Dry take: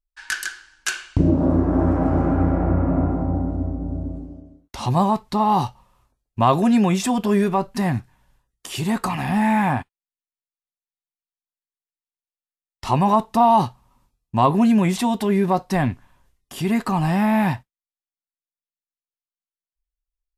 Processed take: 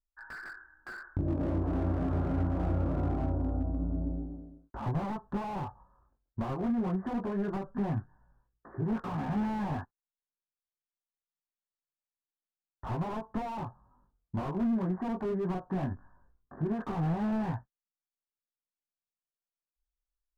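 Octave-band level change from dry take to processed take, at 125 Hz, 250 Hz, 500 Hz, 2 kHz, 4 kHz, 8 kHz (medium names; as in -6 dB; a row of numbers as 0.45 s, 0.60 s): -10.0 dB, -12.5 dB, -13.0 dB, -16.0 dB, under -20 dB, under -30 dB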